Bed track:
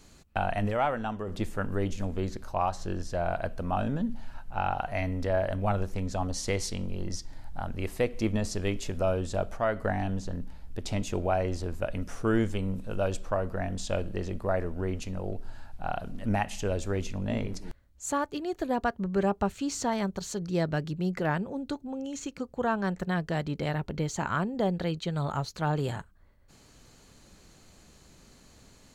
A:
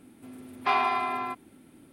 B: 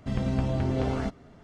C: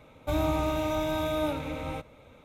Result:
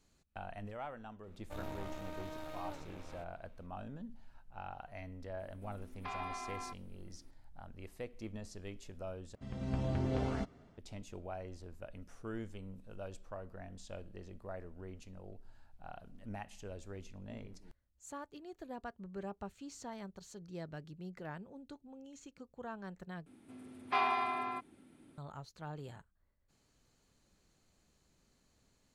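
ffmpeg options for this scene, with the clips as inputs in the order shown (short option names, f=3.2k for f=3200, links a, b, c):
-filter_complex "[1:a]asplit=2[a][b];[0:a]volume=-17dB[c];[3:a]aeval=exprs='max(val(0),0)':c=same[d];[a]alimiter=limit=-20.5dB:level=0:latency=1:release=229[e];[2:a]dynaudnorm=f=130:g=5:m=10dB[f];[b]lowpass=f=9.9k:w=0.5412,lowpass=f=9.9k:w=1.3066[g];[c]asplit=3[h][i][j];[h]atrim=end=9.354[k];[f]atrim=end=1.43,asetpts=PTS-STARTPTS,volume=-17dB[l];[i]atrim=start=10.776:end=23.264[m];[g]atrim=end=1.92,asetpts=PTS-STARTPTS,volume=-7dB[n];[j]atrim=start=25.176[o];[d]atrim=end=2.44,asetpts=PTS-STARTPTS,volume=-13.5dB,afade=t=in:d=0.004:c=hsin,afade=t=out:st=2.436:d=0.004:c=hsin,adelay=1230[p];[e]atrim=end=1.92,asetpts=PTS-STARTPTS,volume=-13dB,afade=t=in:d=0.004:c=hsin,afade=t=out:st=1.916:d=0.004:c=hsin,adelay=5390[q];[k][l]acrossfade=d=0.004:c1=hsin:c2=hsin[r];[r][m]acrossfade=d=0.004:c1=hsin:c2=hsin[s];[s][n]acrossfade=d=0.004:c1=hsin:c2=hsin[t];[t][o]acrossfade=d=0.004:c1=hsin:c2=hsin[u];[u][p][q]amix=inputs=3:normalize=0"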